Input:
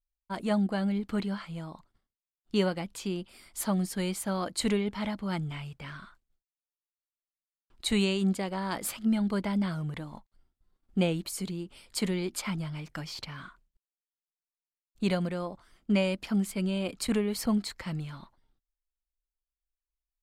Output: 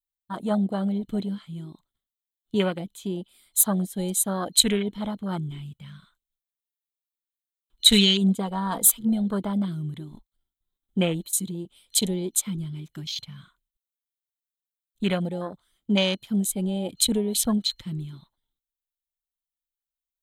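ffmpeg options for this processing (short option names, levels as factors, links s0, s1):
-filter_complex "[0:a]asettb=1/sr,asplit=3[s0][s1][s2];[s0]atrim=end=7.874[s3];[s1]atrim=start=7.87:end=9.01,asetpts=PTS-STARTPTS,afade=t=in:d=0.004:c=qsin,afade=t=out:st=1.136:d=0.004:c=qsin,aecho=1:1:4.3:0.67,atrim=end_sample=50274[s4];[s2]atrim=start=9.006[s5];[s3][s4]acrossfade=d=0.004:c1=hsin:c2=qsin[s6];[s6][s5]acrossfade=d=0.004:c1=qsin:c2=hsin,aemphasis=mode=production:type=75kf,afwtdn=0.0224,superequalizer=13b=2.51:14b=0.501,volume=1.41"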